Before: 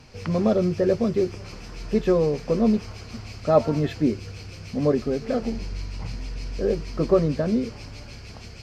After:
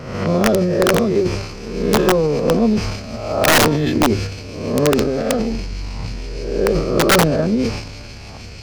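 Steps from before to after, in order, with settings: reverse spectral sustain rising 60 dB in 1.02 s; transient shaper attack +7 dB, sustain +11 dB; integer overflow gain 8 dB; trim +2 dB

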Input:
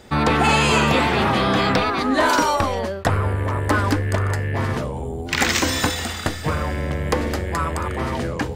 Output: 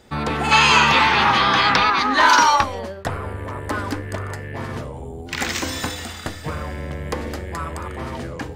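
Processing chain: de-hum 99.37 Hz, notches 28; time-frequency box 0.52–2.63 s, 790–6800 Hz +11 dB; trim -5 dB

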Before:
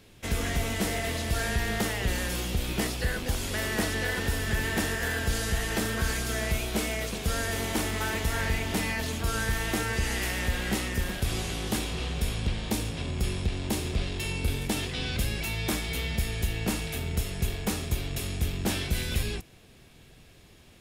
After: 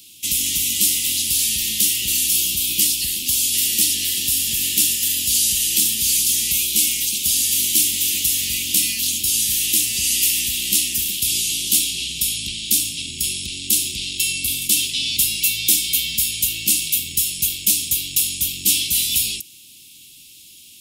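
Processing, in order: elliptic band-stop 310–2800 Hz, stop band 40 dB; tilt EQ +4.5 dB/octave; trim +6.5 dB

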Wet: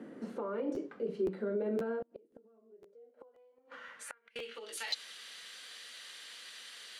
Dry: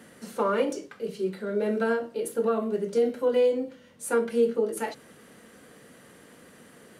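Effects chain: bass shelf 490 Hz -11 dB; compression 20:1, threshold -34 dBFS, peak gain reduction 11.5 dB; peak limiter -32 dBFS, peak gain reduction 6.5 dB; band-pass sweep 290 Hz -> 3.9 kHz, 2.49–4.81 s; 1.99–4.36 s: inverted gate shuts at -45 dBFS, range -33 dB; dynamic bell 300 Hz, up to -6 dB, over -60 dBFS, Q 0.98; crackling interface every 0.52 s, samples 512, repeat, from 0.74 s; trim +17 dB

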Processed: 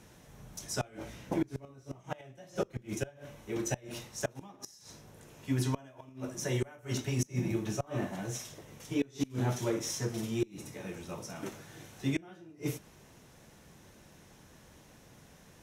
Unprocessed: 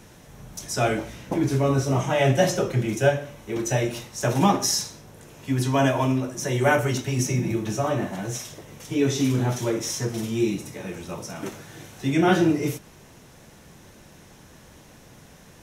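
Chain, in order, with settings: inverted gate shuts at -13 dBFS, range -25 dB; Chebyshev shaper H 7 -34 dB, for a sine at -12 dBFS; trim -6.5 dB

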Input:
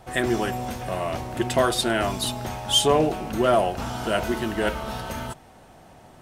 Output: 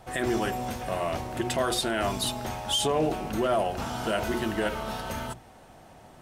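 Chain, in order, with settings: hum notches 60/120/180/240/300/360/420 Hz; peak limiter -15.5 dBFS, peak gain reduction 8 dB; trim -1.5 dB

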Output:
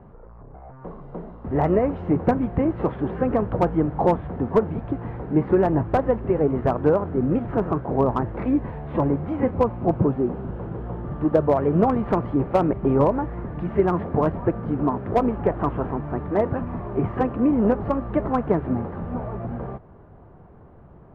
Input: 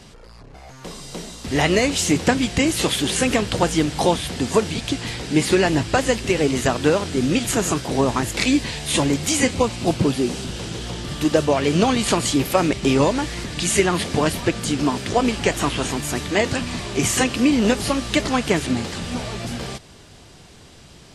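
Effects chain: low-pass 1.2 kHz 24 dB/octave; peaking EQ 270 Hz -3 dB 0.58 oct; slew-rate limiter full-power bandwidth 170 Hz

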